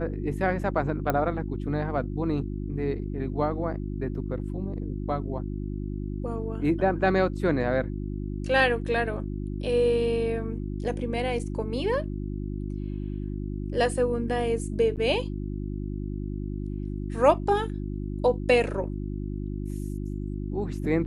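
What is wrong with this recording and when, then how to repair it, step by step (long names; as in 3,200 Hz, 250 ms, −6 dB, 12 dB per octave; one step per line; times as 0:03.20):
mains hum 50 Hz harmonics 7 −32 dBFS
0:01.10: click −12 dBFS
0:14.96–0:14.97: drop-out 8.8 ms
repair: click removal
hum removal 50 Hz, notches 7
repair the gap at 0:14.96, 8.8 ms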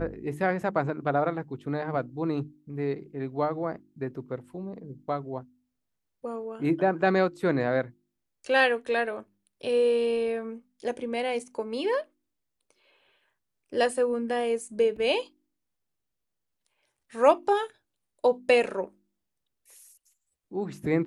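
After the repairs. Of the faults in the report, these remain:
none of them is left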